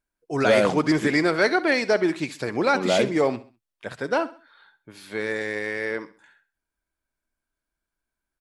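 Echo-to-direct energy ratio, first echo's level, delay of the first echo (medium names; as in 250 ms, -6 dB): -16.5 dB, -17.0 dB, 66 ms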